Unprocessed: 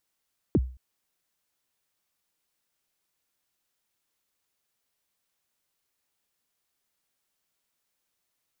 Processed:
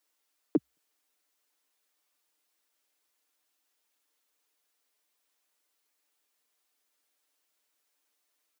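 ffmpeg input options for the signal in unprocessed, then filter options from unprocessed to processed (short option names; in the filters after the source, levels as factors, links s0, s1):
-f lavfi -i "aevalsrc='0.178*pow(10,-3*t/0.39)*sin(2*PI*(420*0.041/log(63/420)*(exp(log(63/420)*min(t,0.041)/0.041)-1)+63*max(t-0.041,0)))':d=0.22:s=44100"
-af "highpass=f=260:w=0.5412,highpass=f=260:w=1.3066,aecho=1:1:6.7:0.65"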